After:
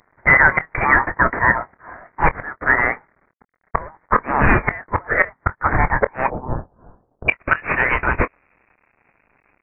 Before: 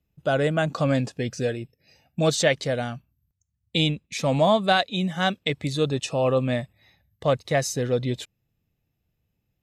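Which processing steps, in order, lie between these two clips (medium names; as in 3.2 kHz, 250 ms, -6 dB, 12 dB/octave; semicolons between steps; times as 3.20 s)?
CVSD coder 32 kbps; steep high-pass 1.5 kHz 48 dB/octave, from 6.26 s 3 kHz, from 7.28 s 1 kHz; inverted gate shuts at -23 dBFS, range -26 dB; doubling 24 ms -14 dB; frequency inversion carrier 3.5 kHz; loudness maximiser +26 dB; trim -1 dB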